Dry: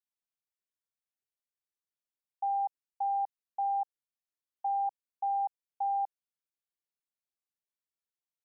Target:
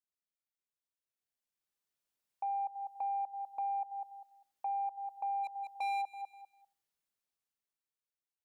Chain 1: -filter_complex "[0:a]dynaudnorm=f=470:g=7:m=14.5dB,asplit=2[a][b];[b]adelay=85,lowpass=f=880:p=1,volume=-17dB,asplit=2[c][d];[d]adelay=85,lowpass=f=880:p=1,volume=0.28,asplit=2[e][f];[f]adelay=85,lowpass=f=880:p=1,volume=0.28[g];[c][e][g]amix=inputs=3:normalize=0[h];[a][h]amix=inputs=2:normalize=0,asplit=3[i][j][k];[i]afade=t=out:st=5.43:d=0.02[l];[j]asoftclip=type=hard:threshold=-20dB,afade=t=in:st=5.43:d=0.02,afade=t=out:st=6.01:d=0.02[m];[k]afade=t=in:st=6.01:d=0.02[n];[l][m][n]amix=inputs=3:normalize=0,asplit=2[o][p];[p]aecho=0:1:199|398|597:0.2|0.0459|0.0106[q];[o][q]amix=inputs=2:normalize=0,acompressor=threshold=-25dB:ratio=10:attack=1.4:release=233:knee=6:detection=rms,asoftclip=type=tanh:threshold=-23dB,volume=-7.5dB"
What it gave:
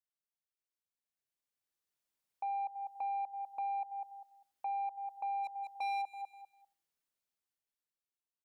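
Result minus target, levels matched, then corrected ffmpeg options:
soft clip: distortion +12 dB
-filter_complex "[0:a]dynaudnorm=f=470:g=7:m=14.5dB,asplit=2[a][b];[b]adelay=85,lowpass=f=880:p=1,volume=-17dB,asplit=2[c][d];[d]adelay=85,lowpass=f=880:p=1,volume=0.28,asplit=2[e][f];[f]adelay=85,lowpass=f=880:p=1,volume=0.28[g];[c][e][g]amix=inputs=3:normalize=0[h];[a][h]amix=inputs=2:normalize=0,asplit=3[i][j][k];[i]afade=t=out:st=5.43:d=0.02[l];[j]asoftclip=type=hard:threshold=-20dB,afade=t=in:st=5.43:d=0.02,afade=t=out:st=6.01:d=0.02[m];[k]afade=t=in:st=6.01:d=0.02[n];[l][m][n]amix=inputs=3:normalize=0,asplit=2[o][p];[p]aecho=0:1:199|398|597:0.2|0.0459|0.0106[q];[o][q]amix=inputs=2:normalize=0,acompressor=threshold=-25dB:ratio=10:attack=1.4:release=233:knee=6:detection=rms,asoftclip=type=tanh:threshold=-16.5dB,volume=-7.5dB"

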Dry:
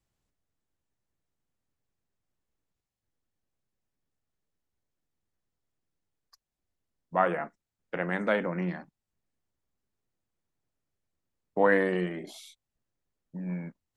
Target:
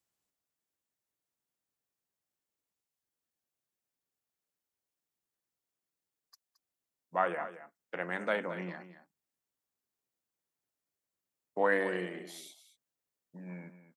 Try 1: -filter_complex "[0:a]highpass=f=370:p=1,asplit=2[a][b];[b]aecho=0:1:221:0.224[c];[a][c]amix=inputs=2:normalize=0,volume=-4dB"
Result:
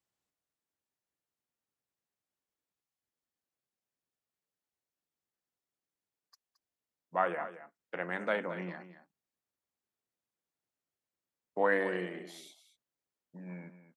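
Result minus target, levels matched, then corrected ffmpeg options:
8000 Hz band -4.5 dB
-filter_complex "[0:a]highpass=f=370:p=1,highshelf=f=7k:g=8.5,asplit=2[a][b];[b]aecho=0:1:221:0.224[c];[a][c]amix=inputs=2:normalize=0,volume=-4dB"

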